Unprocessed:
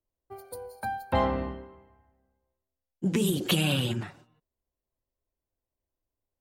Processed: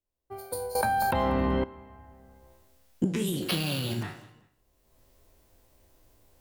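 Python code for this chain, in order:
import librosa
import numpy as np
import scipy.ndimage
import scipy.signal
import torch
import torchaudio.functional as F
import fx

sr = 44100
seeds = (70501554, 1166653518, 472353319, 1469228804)

y = fx.spec_trails(x, sr, decay_s=0.38)
y = fx.recorder_agc(y, sr, target_db=-15.5, rise_db_per_s=24.0, max_gain_db=30)
y = fx.sample_hold(y, sr, seeds[0], rate_hz=7300.0, jitter_pct=0, at=(3.42, 4.03))
y = fx.echo_feedback(y, sr, ms=192, feedback_pct=29, wet_db=-18.5)
y = fx.env_flatten(y, sr, amount_pct=100, at=(0.75, 1.64))
y = y * librosa.db_to_amplitude(-5.5)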